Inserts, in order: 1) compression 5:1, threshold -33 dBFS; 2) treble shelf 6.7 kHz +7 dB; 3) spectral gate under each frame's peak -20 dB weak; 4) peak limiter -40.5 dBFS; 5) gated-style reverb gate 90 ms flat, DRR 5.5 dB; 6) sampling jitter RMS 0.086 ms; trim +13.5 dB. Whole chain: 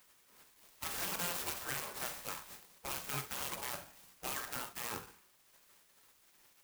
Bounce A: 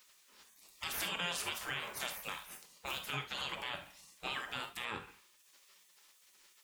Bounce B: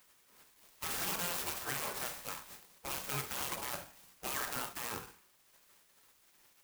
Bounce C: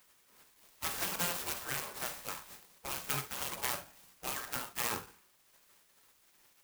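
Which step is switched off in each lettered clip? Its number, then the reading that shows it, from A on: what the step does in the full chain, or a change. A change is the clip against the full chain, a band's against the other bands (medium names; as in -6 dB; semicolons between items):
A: 6, 4 kHz band +5.5 dB; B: 1, loudness change +1.5 LU; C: 4, crest factor change +5.0 dB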